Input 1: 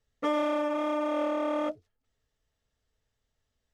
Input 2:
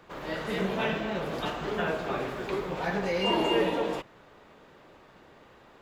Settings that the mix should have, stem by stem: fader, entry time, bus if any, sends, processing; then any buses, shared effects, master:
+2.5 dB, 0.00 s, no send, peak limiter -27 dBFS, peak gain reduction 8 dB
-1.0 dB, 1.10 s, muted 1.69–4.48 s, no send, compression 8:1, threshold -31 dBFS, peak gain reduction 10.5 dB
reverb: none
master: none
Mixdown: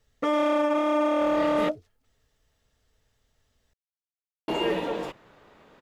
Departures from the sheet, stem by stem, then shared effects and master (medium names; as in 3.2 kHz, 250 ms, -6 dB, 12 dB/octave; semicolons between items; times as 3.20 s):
stem 1 +2.5 dB -> +9.5 dB; stem 2: missing compression 8:1, threshold -31 dBFS, peak gain reduction 10.5 dB